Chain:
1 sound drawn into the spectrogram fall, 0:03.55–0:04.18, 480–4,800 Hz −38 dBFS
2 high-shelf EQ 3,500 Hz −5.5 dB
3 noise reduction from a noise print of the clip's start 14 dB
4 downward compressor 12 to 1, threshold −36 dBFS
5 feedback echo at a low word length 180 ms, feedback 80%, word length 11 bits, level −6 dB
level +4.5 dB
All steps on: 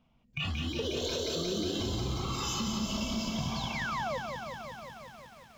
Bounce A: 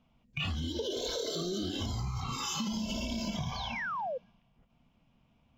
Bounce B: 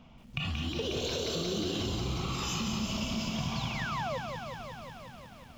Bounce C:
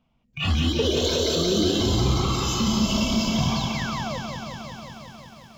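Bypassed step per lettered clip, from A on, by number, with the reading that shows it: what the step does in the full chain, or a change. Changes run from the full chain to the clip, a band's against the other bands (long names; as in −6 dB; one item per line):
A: 5, change in momentary loudness spread −9 LU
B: 3, 125 Hz band +1.5 dB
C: 4, average gain reduction 9.0 dB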